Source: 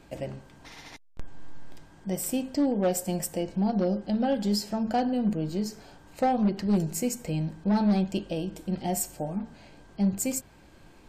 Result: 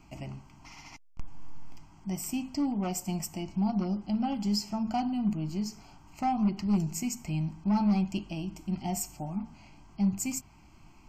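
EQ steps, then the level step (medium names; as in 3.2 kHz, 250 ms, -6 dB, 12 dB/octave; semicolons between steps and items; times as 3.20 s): static phaser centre 2.5 kHz, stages 8; 0.0 dB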